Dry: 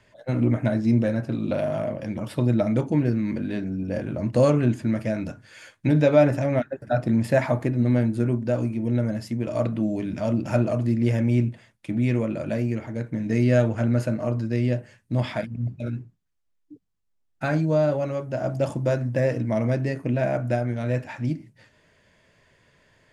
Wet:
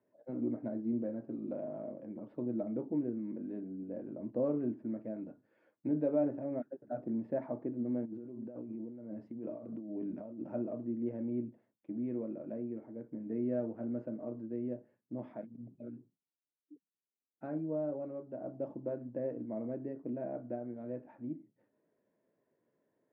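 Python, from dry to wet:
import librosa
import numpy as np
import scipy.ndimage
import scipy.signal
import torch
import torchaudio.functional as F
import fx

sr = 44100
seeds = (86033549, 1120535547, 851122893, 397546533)

y = fx.over_compress(x, sr, threshold_db=-29.0, ratio=-1.0, at=(8.05, 10.47))
y = fx.ladder_bandpass(y, sr, hz=370.0, resonance_pct=30)
y = y * librosa.db_to_amplitude(-1.5)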